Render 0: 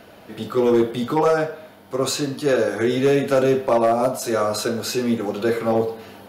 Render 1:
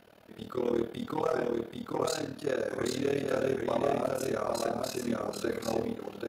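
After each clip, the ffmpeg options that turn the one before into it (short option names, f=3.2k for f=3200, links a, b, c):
-filter_complex "[0:a]tremolo=f=38:d=0.919,asplit=2[a][b];[b]aecho=0:1:785:0.708[c];[a][c]amix=inputs=2:normalize=0,volume=-9dB"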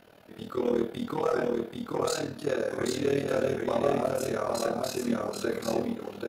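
-filter_complex "[0:a]asplit=2[a][b];[b]adelay=21,volume=-6.5dB[c];[a][c]amix=inputs=2:normalize=0,volume=1.5dB"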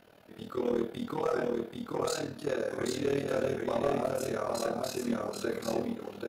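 -af "aeval=exprs='clip(val(0),-1,0.106)':c=same,volume=-3dB"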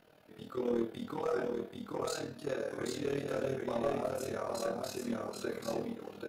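-af "flanger=delay=6.4:depth=4.2:regen=73:speed=0.33:shape=sinusoidal"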